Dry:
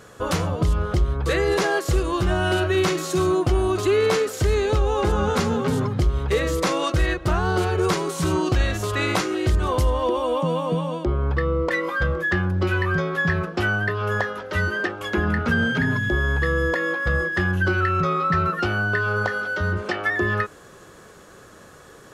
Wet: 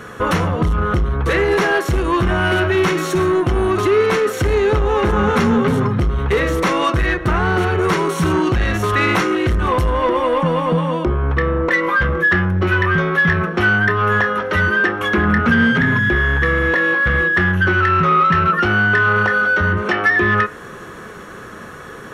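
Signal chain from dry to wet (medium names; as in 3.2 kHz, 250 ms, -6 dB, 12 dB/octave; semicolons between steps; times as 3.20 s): band-stop 4.9 kHz, Q 13; in parallel at 0 dB: compression, threshold -28 dBFS, peak gain reduction 12.5 dB; on the sum: saturation -16 dBFS, distortion -15 dB; reverberation RT60 0.50 s, pre-delay 3 ms, DRR 12.5 dB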